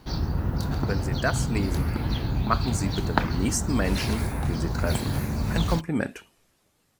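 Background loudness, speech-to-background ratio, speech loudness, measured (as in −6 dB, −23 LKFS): −28.0 LKFS, −2.0 dB, −30.0 LKFS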